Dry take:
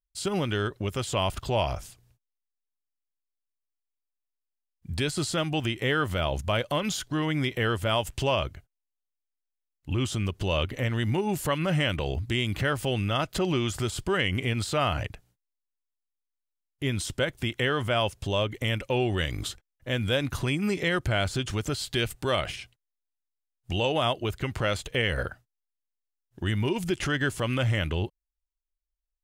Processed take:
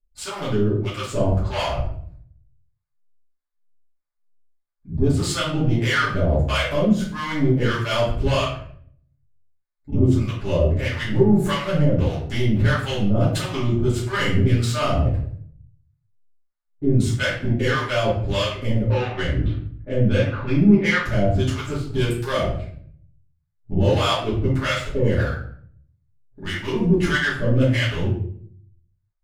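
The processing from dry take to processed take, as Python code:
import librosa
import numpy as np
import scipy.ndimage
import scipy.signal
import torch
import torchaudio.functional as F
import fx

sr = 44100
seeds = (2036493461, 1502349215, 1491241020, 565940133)

y = fx.wiener(x, sr, points=15)
y = fx.lowpass(y, sr, hz=3000.0, slope=24, at=(18.83, 21.03))
y = 10.0 ** (-23.0 / 20.0) * np.tanh(y / 10.0 ** (-23.0 / 20.0))
y = fx.harmonic_tremolo(y, sr, hz=1.6, depth_pct=100, crossover_hz=710.0)
y = fx.room_shoebox(y, sr, seeds[0], volume_m3=80.0, walls='mixed', distance_m=2.5)
y = y * librosa.db_to_amplitude(2.5)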